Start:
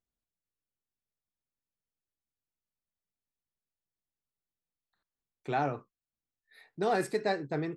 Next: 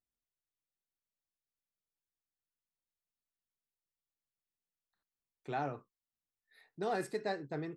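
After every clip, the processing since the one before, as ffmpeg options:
ffmpeg -i in.wav -af "bandreject=frequency=2300:width=26,volume=-6.5dB" out.wav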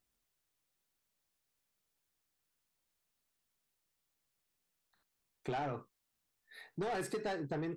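ffmpeg -i in.wav -af "asoftclip=type=tanh:threshold=-36dB,acompressor=threshold=-46dB:ratio=6,volume=10.5dB" out.wav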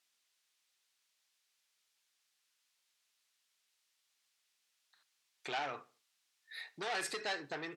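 ffmpeg -i in.wav -filter_complex "[0:a]bandpass=frequency=3800:width_type=q:width=0.69:csg=0,asplit=2[link_01][link_02];[link_02]adelay=73,lowpass=frequency=3800:poles=1,volume=-22dB,asplit=2[link_03][link_04];[link_04]adelay=73,lowpass=frequency=3800:poles=1,volume=0.38,asplit=2[link_05][link_06];[link_06]adelay=73,lowpass=frequency=3800:poles=1,volume=0.38[link_07];[link_01][link_03][link_05][link_07]amix=inputs=4:normalize=0,volume=10dB" out.wav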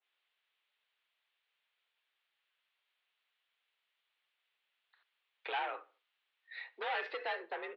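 ffmpeg -i in.wav -af "highpass=frequency=310:width_type=q:width=0.5412,highpass=frequency=310:width_type=q:width=1.307,lowpass=frequency=3400:width_type=q:width=0.5176,lowpass=frequency=3400:width_type=q:width=0.7071,lowpass=frequency=3400:width_type=q:width=1.932,afreqshift=58,adynamicequalizer=threshold=0.00282:dfrequency=1500:dqfactor=0.7:tfrequency=1500:tqfactor=0.7:attack=5:release=100:ratio=0.375:range=2.5:mode=cutabove:tftype=highshelf,volume=2dB" out.wav

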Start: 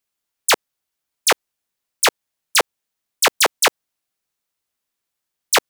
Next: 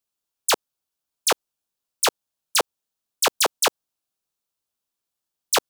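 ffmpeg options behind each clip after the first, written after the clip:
ffmpeg -i in.wav -af "equalizer=frequency=2000:width=2.4:gain=-8,volume=-3.5dB" out.wav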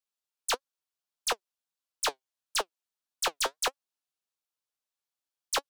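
ffmpeg -i in.wav -filter_complex "[0:a]flanger=delay=3.5:depth=4.2:regen=61:speed=1.6:shape=sinusoidal,asplit=2[link_01][link_02];[link_02]highpass=frequency=720:poles=1,volume=9dB,asoftclip=type=tanh:threshold=-12dB[link_03];[link_01][link_03]amix=inputs=2:normalize=0,lowpass=frequency=7100:poles=1,volume=-6dB,volume=-6.5dB" out.wav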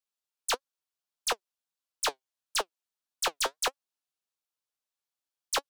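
ffmpeg -i in.wav -af anull out.wav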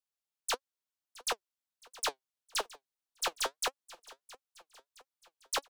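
ffmpeg -i in.wav -af "aecho=1:1:667|1334|2001|2668:0.1|0.051|0.026|0.0133,volume=-4dB" out.wav

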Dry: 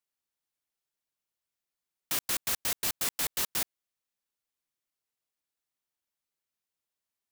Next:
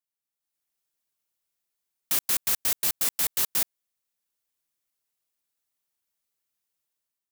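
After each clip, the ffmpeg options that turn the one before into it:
ffmpeg -i in.wav -af "highshelf=frequency=6800:gain=7,dynaudnorm=framelen=200:gausssize=5:maxgain=10dB,volume=-8dB" out.wav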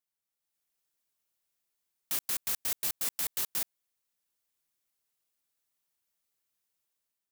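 ffmpeg -i in.wav -af "alimiter=limit=-21dB:level=0:latency=1:release=17" out.wav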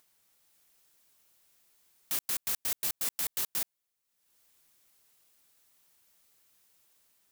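ffmpeg -i in.wav -af "acompressor=mode=upward:threshold=-53dB:ratio=2.5" out.wav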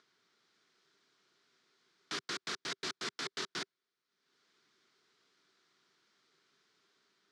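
ffmpeg -i in.wav -af "highpass=frequency=140:width=0.5412,highpass=frequency=140:width=1.3066,equalizer=frequency=390:width_type=q:width=4:gain=9,equalizer=frequency=560:width_type=q:width=4:gain=-8,equalizer=frequency=820:width_type=q:width=4:gain=-7,equalizer=frequency=1400:width_type=q:width=4:gain=5,equalizer=frequency=2700:width_type=q:width=4:gain=-6,lowpass=frequency=4900:width=0.5412,lowpass=frequency=4900:width=1.3066,volume=3.5dB" out.wav

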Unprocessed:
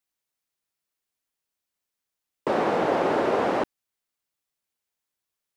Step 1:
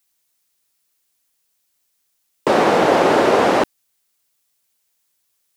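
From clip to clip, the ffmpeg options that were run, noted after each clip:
ffmpeg -i in.wav -af "highshelf=frequency=3500:gain=9.5,volume=8.5dB" out.wav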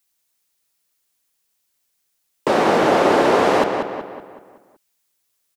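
ffmpeg -i in.wav -filter_complex "[0:a]asplit=2[link_01][link_02];[link_02]adelay=188,lowpass=frequency=3500:poles=1,volume=-5.5dB,asplit=2[link_03][link_04];[link_04]adelay=188,lowpass=frequency=3500:poles=1,volume=0.49,asplit=2[link_05][link_06];[link_06]adelay=188,lowpass=frequency=3500:poles=1,volume=0.49,asplit=2[link_07][link_08];[link_08]adelay=188,lowpass=frequency=3500:poles=1,volume=0.49,asplit=2[link_09][link_10];[link_10]adelay=188,lowpass=frequency=3500:poles=1,volume=0.49,asplit=2[link_11][link_12];[link_12]adelay=188,lowpass=frequency=3500:poles=1,volume=0.49[link_13];[link_01][link_03][link_05][link_07][link_09][link_11][link_13]amix=inputs=7:normalize=0,volume=-2dB" out.wav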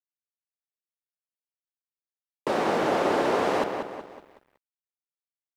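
ffmpeg -i in.wav -af "aeval=exprs='sgn(val(0))*max(abs(val(0))-0.00668,0)':channel_layout=same,volume=-8.5dB" out.wav

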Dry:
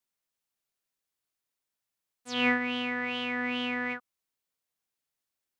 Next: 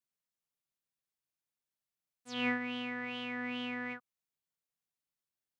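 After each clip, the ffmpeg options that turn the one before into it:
ffmpeg -i in.wav -af "equalizer=frequency=150:width_type=o:width=0.94:gain=7.5,volume=-8dB" out.wav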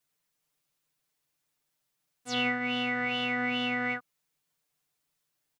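ffmpeg -i in.wav -af "aecho=1:1:6.7:1,acompressor=threshold=-35dB:ratio=6,volume=9dB" out.wav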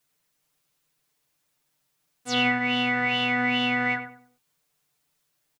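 ffmpeg -i in.wav -filter_complex "[0:a]asplit=2[link_01][link_02];[link_02]adelay=96,lowpass=frequency=1300:poles=1,volume=-7dB,asplit=2[link_03][link_04];[link_04]adelay=96,lowpass=frequency=1300:poles=1,volume=0.35,asplit=2[link_05][link_06];[link_06]adelay=96,lowpass=frequency=1300:poles=1,volume=0.35,asplit=2[link_07][link_08];[link_08]adelay=96,lowpass=frequency=1300:poles=1,volume=0.35[link_09];[link_01][link_03][link_05][link_07][link_09]amix=inputs=5:normalize=0,volume=6dB" out.wav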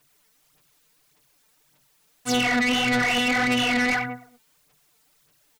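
ffmpeg -i in.wav -af "alimiter=limit=-18.5dB:level=0:latency=1:release=30,aphaser=in_gain=1:out_gain=1:delay=4.6:decay=0.58:speed=1.7:type=sinusoidal,asoftclip=type=tanh:threshold=-27.5dB,volume=8.5dB" out.wav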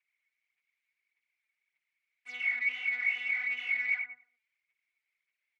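ffmpeg -i in.wav -af "bandpass=frequency=2200:width_type=q:width=16:csg=0" out.wav

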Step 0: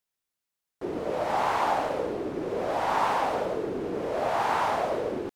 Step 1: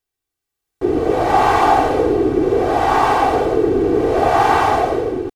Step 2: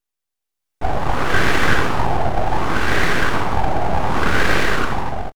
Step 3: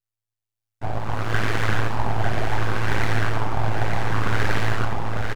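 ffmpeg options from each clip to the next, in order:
ffmpeg -i in.wav -af "lowshelf=frequency=350:gain=10.5,aecho=1:1:2.6:0.72,dynaudnorm=framelen=210:gausssize=7:maxgain=11.5dB" out.wav
ffmpeg -i in.wav -filter_complex "[0:a]aeval=exprs='abs(val(0))':channel_layout=same,asplit=2[link_01][link_02];[link_02]adelay=24,volume=-14dB[link_03];[link_01][link_03]amix=inputs=2:normalize=0" out.wav
ffmpeg -i in.wav -filter_complex "[0:a]tremolo=f=110:d=0.919,flanger=delay=2.1:depth=8.8:regen=68:speed=2:shape=triangular,asplit=2[link_01][link_02];[link_02]aecho=0:1:898:0.562[link_03];[link_01][link_03]amix=inputs=2:normalize=0" out.wav

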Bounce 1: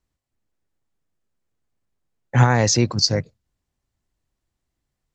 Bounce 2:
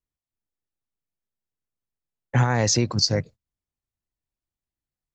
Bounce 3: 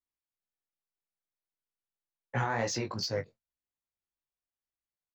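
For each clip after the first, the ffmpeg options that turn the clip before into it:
ffmpeg -i in.wav -af "agate=range=-14dB:threshold=-39dB:ratio=16:detection=peak,acompressor=threshold=-16dB:ratio=6" out.wav
ffmpeg -i in.wav -filter_complex "[0:a]flanger=delay=16:depth=3.4:speed=2.6,asplit=2[link_01][link_02];[link_02]highpass=frequency=720:poles=1,volume=12dB,asoftclip=type=tanh:threshold=-9dB[link_03];[link_01][link_03]amix=inputs=2:normalize=0,lowpass=frequency=2000:poles=1,volume=-6dB,asplit=2[link_04][link_05];[link_05]adelay=22,volume=-12dB[link_06];[link_04][link_06]amix=inputs=2:normalize=0,volume=-7.5dB" out.wav

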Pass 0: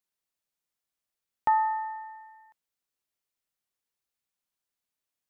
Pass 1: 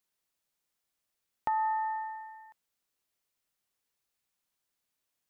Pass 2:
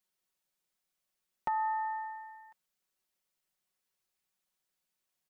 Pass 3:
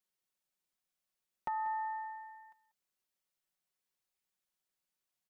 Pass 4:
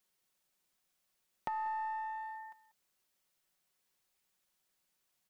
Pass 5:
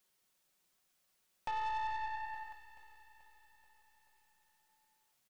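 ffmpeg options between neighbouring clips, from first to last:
ffmpeg -i in.wav -af "alimiter=limit=-22.5dB:level=0:latency=1,acompressor=threshold=-33dB:ratio=3,volume=4dB" out.wav
ffmpeg -i in.wav -af "aecho=1:1:5.4:0.65,volume=-3dB" out.wav
ffmpeg -i in.wav -af "aecho=1:1:190:0.15,volume=-4.5dB" out.wav
ffmpeg -i in.wav -filter_complex "[0:a]acompressor=threshold=-47dB:ratio=2.5,asplit=2[link_01][link_02];[link_02]aeval=exprs='clip(val(0),-1,0.00299)':channel_layout=same,volume=-9dB[link_03];[link_01][link_03]amix=inputs=2:normalize=0,volume=5.5dB" out.wav
ffmpeg -i in.wav -af "flanger=delay=6.8:depth=6.3:regen=72:speed=0.98:shape=triangular,aeval=exprs='(tanh(141*val(0)+0.45)-tanh(0.45))/141':channel_layout=same,aecho=1:1:433|866|1299|1732|2165|2598:0.2|0.116|0.0671|0.0389|0.0226|0.0131,volume=9dB" out.wav

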